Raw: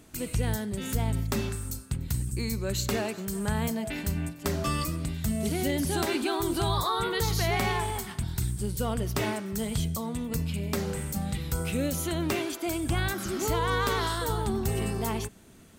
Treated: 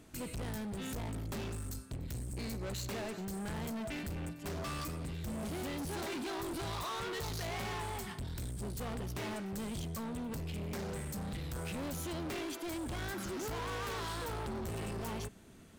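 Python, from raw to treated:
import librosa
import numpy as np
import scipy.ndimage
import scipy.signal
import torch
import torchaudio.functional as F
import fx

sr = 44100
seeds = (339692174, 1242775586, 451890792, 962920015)

y = fx.high_shelf(x, sr, hz=6400.0, db=-5.5)
y = np.clip(10.0 ** (34.5 / 20.0) * y, -1.0, 1.0) / 10.0 ** (34.5 / 20.0)
y = y * librosa.db_to_amplitude(-3.0)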